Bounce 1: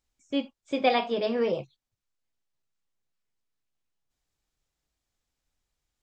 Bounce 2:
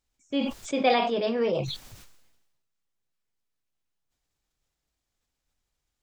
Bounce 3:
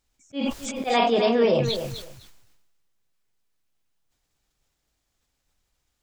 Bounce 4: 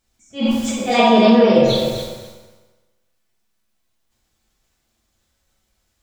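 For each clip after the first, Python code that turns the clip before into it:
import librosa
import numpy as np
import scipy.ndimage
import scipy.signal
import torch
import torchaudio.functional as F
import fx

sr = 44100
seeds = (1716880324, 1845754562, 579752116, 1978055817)

y1 = fx.sustainer(x, sr, db_per_s=48.0)
y2 = fx.auto_swell(y1, sr, attack_ms=176.0)
y2 = fx.echo_feedback(y2, sr, ms=254, feedback_pct=17, wet_db=-9.5)
y2 = F.gain(torch.from_numpy(y2), 6.0).numpy()
y3 = fx.rev_fdn(y2, sr, rt60_s=1.2, lf_ratio=0.9, hf_ratio=0.75, size_ms=27.0, drr_db=-3.5)
y3 = F.gain(torch.from_numpy(y3), 2.0).numpy()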